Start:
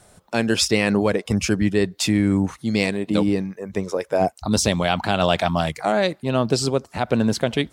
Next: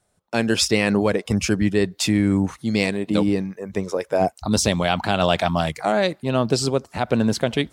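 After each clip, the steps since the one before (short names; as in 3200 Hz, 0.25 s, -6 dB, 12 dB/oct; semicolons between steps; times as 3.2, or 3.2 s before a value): gate -45 dBFS, range -17 dB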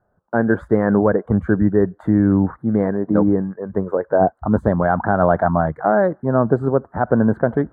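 elliptic low-pass 1600 Hz, stop band 40 dB; gain +4.5 dB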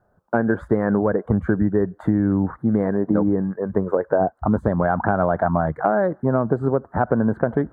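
compressor, threshold -18 dBFS, peak gain reduction 8.5 dB; gain +3 dB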